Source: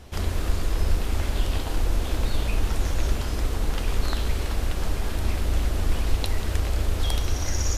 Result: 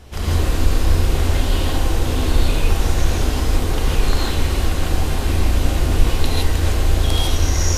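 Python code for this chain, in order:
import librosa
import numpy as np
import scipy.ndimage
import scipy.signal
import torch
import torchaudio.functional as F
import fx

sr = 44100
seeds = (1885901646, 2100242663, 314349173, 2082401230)

y = fx.rev_gated(x, sr, seeds[0], gate_ms=180, shape='rising', drr_db=-4.5)
y = F.gain(torch.from_numpy(y), 2.0).numpy()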